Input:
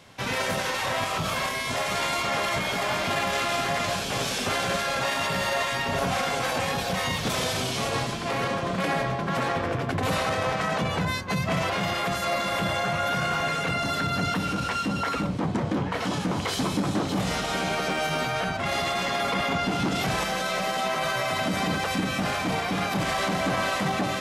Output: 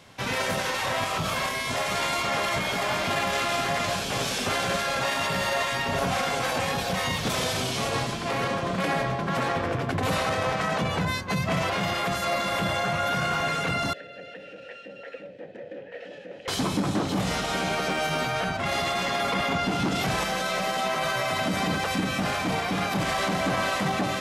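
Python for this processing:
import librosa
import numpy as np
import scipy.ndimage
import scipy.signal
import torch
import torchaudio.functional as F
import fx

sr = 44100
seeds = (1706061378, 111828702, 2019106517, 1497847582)

y = fx.vowel_filter(x, sr, vowel='e', at=(13.93, 16.48))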